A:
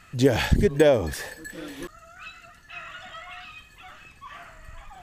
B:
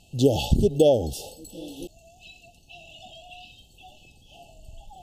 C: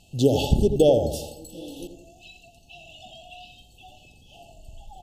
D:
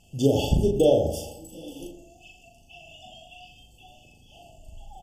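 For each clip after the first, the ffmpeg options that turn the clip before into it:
ffmpeg -i in.wav -af "afftfilt=real='re*(1-between(b*sr/4096,870,2600))':imag='im*(1-between(b*sr/4096,870,2600))':win_size=4096:overlap=0.75" out.wav
ffmpeg -i in.wav -filter_complex "[0:a]asplit=2[link_01][link_02];[link_02]adelay=86,lowpass=frequency=1700:poles=1,volume=-7.5dB,asplit=2[link_03][link_04];[link_04]adelay=86,lowpass=frequency=1700:poles=1,volume=0.51,asplit=2[link_05][link_06];[link_06]adelay=86,lowpass=frequency=1700:poles=1,volume=0.51,asplit=2[link_07][link_08];[link_08]adelay=86,lowpass=frequency=1700:poles=1,volume=0.51,asplit=2[link_09][link_10];[link_10]adelay=86,lowpass=frequency=1700:poles=1,volume=0.51,asplit=2[link_11][link_12];[link_12]adelay=86,lowpass=frequency=1700:poles=1,volume=0.51[link_13];[link_01][link_03][link_05][link_07][link_09][link_11][link_13]amix=inputs=7:normalize=0" out.wav
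ffmpeg -i in.wav -filter_complex "[0:a]asuperstop=centerf=4000:order=20:qfactor=4.4,asplit=2[link_01][link_02];[link_02]adelay=37,volume=-3.5dB[link_03];[link_01][link_03]amix=inputs=2:normalize=0,volume=-3dB" out.wav

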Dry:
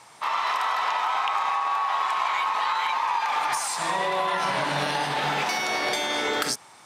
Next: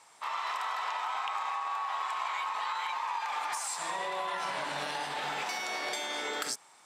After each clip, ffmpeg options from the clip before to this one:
ffmpeg -i in.wav -af "highpass=frequency=360:poles=1,equalizer=frequency=7600:width=6.8:gain=7,volume=-8.5dB" out.wav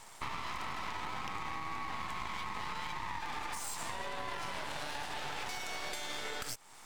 ffmpeg -i in.wav -af "acompressor=threshold=-44dB:ratio=4,aeval=exprs='max(val(0),0)':channel_layout=same,volume=9dB" out.wav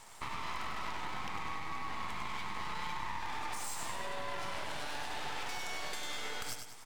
ffmpeg -i in.wav -af "aecho=1:1:99|198|297|396|495|594:0.501|0.236|0.111|0.052|0.0245|0.0115,volume=-1.5dB" out.wav

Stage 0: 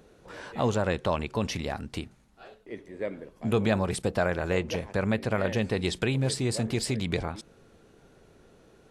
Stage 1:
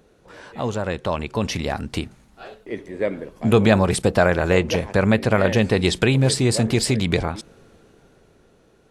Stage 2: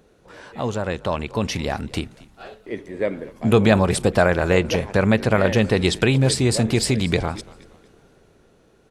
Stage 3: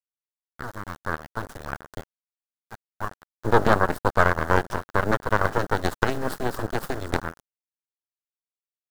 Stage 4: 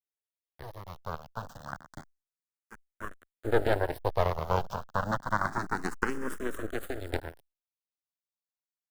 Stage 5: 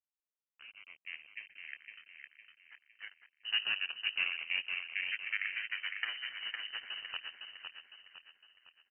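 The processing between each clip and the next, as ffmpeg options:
ffmpeg -i in.wav -af "dynaudnorm=framelen=230:gausssize=13:maxgain=11.5dB" out.wav
ffmpeg -i in.wav -filter_complex "[0:a]asplit=4[link_01][link_02][link_03][link_04];[link_02]adelay=234,afreqshift=-56,volume=-21.5dB[link_05];[link_03]adelay=468,afreqshift=-112,volume=-30.1dB[link_06];[link_04]adelay=702,afreqshift=-168,volume=-38.8dB[link_07];[link_01][link_05][link_06][link_07]amix=inputs=4:normalize=0" out.wav
ffmpeg -i in.wav -af "aeval=exprs='0.794*(cos(1*acos(clip(val(0)/0.794,-1,1)))-cos(1*PI/2))+0.355*(cos(4*acos(clip(val(0)/0.794,-1,1)))-cos(4*PI/2))+0.141*(cos(7*acos(clip(val(0)/0.794,-1,1)))-cos(7*PI/2))':channel_layout=same,acrusher=bits=4:mix=0:aa=0.000001,highshelf=frequency=1900:width_type=q:width=3:gain=-7,volume=-6dB" out.wav
ffmpeg -i in.wav -filter_complex "[0:a]asplit=2[link_01][link_02];[link_02]afreqshift=0.29[link_03];[link_01][link_03]amix=inputs=2:normalize=1,volume=-4.5dB" out.wav
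ffmpeg -i in.wav -filter_complex "[0:a]highpass=frequency=260:width=0.5412,highpass=frequency=260:width=1.3066,asplit=2[link_01][link_02];[link_02]aecho=0:1:508|1016|1524|2032|2540:0.531|0.228|0.0982|0.0422|0.0181[link_03];[link_01][link_03]amix=inputs=2:normalize=0,lowpass=frequency=2800:width_type=q:width=0.5098,lowpass=frequency=2800:width_type=q:width=0.6013,lowpass=frequency=2800:width_type=q:width=0.9,lowpass=frequency=2800:width_type=q:width=2.563,afreqshift=-3300,volume=-7dB" out.wav

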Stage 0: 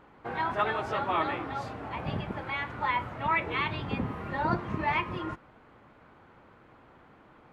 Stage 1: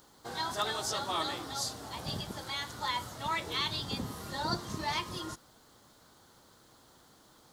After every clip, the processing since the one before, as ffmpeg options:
ffmpeg -i in.wav -af "aexciter=amount=13.5:drive=8.7:freq=3900,volume=-6dB" out.wav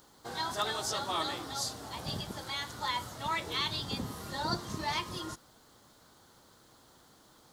ffmpeg -i in.wav -af anull out.wav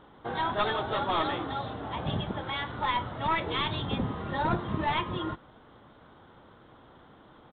ffmpeg -i in.wav -af "aresample=8000,aeval=exprs='clip(val(0),-1,0.0224)':channel_layout=same,aresample=44100,highshelf=frequency=2700:gain=-9.5,volume=8.5dB" out.wav

